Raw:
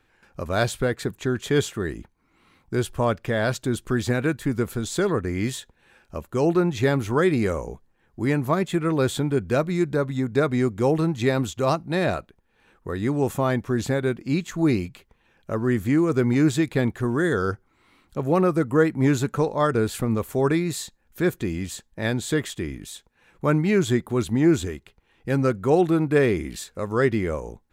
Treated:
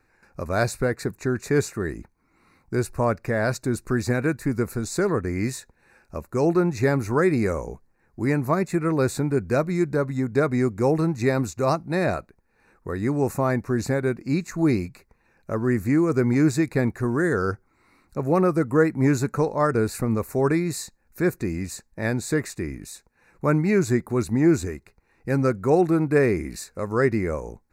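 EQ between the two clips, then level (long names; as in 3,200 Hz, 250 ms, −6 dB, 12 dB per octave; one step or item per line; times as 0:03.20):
Butterworth band-reject 3,200 Hz, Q 2.1
0.0 dB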